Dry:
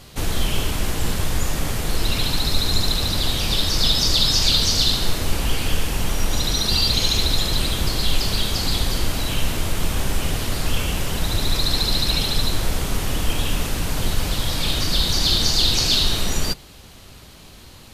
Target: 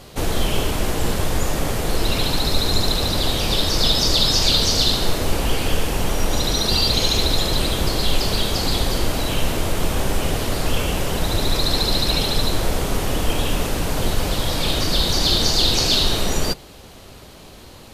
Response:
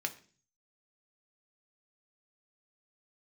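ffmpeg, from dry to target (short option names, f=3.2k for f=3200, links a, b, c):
-af "equalizer=f=520:w=0.66:g=7"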